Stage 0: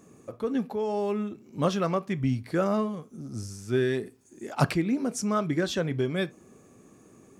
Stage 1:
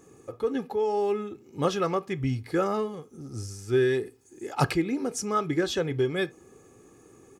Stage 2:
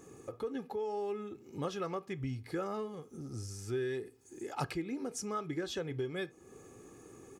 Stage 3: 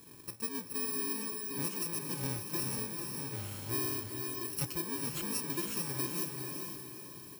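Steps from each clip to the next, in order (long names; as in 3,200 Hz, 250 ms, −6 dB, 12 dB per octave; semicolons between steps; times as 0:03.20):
comb filter 2.4 ms, depth 53%
downward compressor 2 to 1, threshold −43 dBFS, peak gain reduction 13.5 dB
samples in bit-reversed order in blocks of 64 samples; feedback delay with all-pass diffusion 454 ms, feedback 43%, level −4 dB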